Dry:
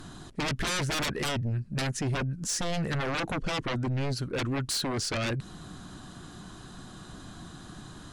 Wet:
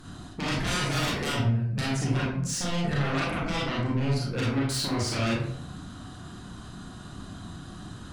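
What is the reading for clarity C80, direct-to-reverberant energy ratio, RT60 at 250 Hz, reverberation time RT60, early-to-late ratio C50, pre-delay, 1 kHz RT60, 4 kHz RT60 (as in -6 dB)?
5.5 dB, -5.5 dB, 0.80 s, 0.65 s, 1.5 dB, 30 ms, 0.55 s, 0.40 s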